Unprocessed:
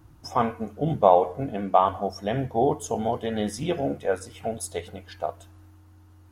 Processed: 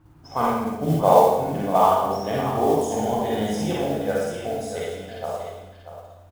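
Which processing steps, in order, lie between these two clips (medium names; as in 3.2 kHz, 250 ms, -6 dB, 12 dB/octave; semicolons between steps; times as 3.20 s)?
level-controlled noise filter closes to 2.9 kHz, open at -20.5 dBFS; Schroeder reverb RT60 1 s, DRR -5 dB; modulation noise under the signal 24 dB; on a send: delay 636 ms -11 dB; on the sum: trim -3 dB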